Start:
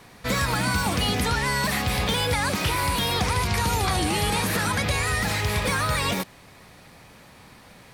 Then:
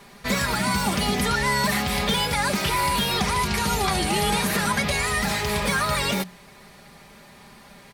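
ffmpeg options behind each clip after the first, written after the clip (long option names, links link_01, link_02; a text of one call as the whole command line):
ffmpeg -i in.wav -af "bandreject=frequency=60:width_type=h:width=6,bandreject=frequency=120:width_type=h:width=6,bandreject=frequency=180:width_type=h:width=6,aecho=1:1:5:0.62" out.wav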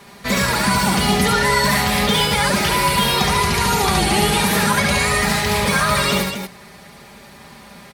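ffmpeg -i in.wav -filter_complex "[0:a]highpass=40,asplit=2[link_01][link_02];[link_02]aecho=0:1:69.97|233.2:0.708|0.447[link_03];[link_01][link_03]amix=inputs=2:normalize=0,volume=4dB" out.wav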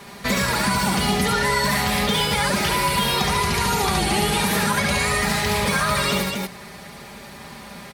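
ffmpeg -i in.wav -af "acompressor=threshold=-25dB:ratio=2,volume=2.5dB" out.wav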